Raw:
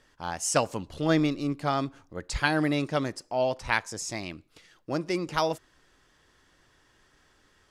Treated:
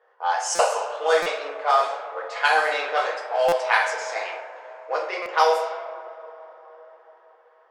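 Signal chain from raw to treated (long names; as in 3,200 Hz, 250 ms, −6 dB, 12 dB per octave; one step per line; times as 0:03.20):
elliptic high-pass filter 480 Hz, stop band 50 dB
on a send: tape delay 70 ms, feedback 76%, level −13 dB, low-pass 2,600 Hz
on the sum: dynamic equaliser 880 Hz, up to +3 dB, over −38 dBFS, Q 0.88
in parallel at −0.5 dB: downward compressor, threshold −36 dBFS, peak gain reduction 17.5 dB
on the sum: coupled-rooms reverb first 0.46 s, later 4.7 s, from −18 dB, DRR −3.5 dB
low-pass that shuts in the quiet parts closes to 960 Hz, open at −15.5 dBFS
buffer that repeats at 0:00.55/0:01.22/0:03.48/0:05.22, samples 256, times 6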